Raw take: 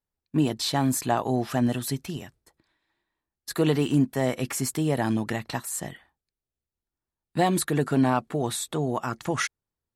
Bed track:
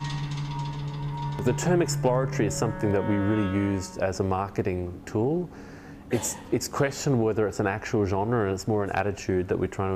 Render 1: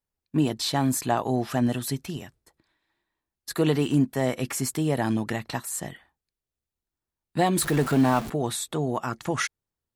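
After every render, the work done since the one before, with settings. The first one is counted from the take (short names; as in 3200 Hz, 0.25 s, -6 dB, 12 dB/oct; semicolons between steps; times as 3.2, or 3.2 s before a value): 7.58–8.3 zero-crossing step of -29 dBFS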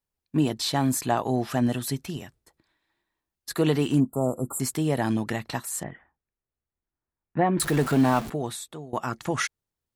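4–4.6 brick-wall FIR band-stop 1400–7000 Hz; 5.83–7.6 LPF 2100 Hz 24 dB/oct; 8.18–8.93 fade out, to -20 dB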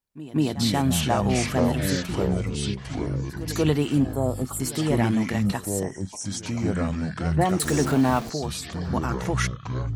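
reverse echo 0.186 s -16 dB; echoes that change speed 0.116 s, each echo -5 st, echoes 3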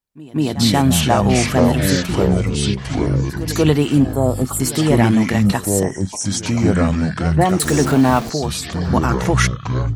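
AGC gain up to 11.5 dB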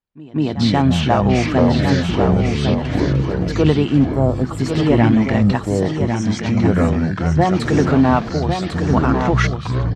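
air absorption 170 m; echo 1.101 s -6.5 dB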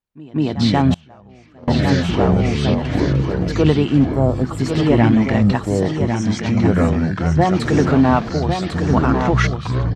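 0.94–1.68 gate -8 dBFS, range -29 dB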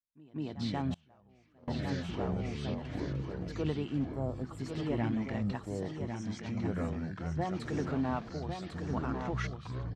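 gain -19 dB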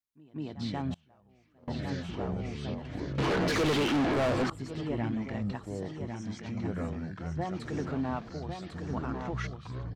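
3.18–4.5 overdrive pedal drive 36 dB, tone 4400 Hz, clips at -20 dBFS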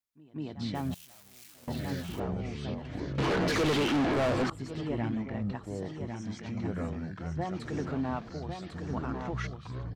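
0.75–2.2 switching spikes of -39 dBFS; 5.21–5.63 LPF 1700 Hz -> 4100 Hz 6 dB/oct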